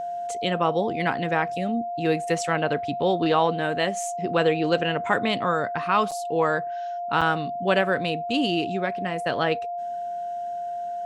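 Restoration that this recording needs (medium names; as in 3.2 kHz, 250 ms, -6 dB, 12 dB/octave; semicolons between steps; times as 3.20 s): band-stop 700 Hz, Q 30; interpolate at 6.11/7.21 s, 6.4 ms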